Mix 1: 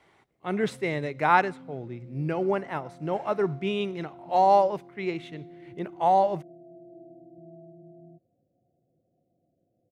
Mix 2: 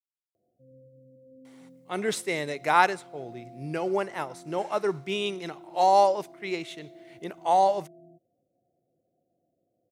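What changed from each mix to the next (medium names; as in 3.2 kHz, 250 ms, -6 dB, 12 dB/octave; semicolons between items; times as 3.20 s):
speech: entry +1.45 s; master: add tone controls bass -8 dB, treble +14 dB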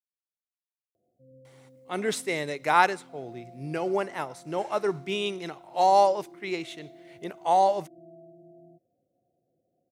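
background: entry +0.60 s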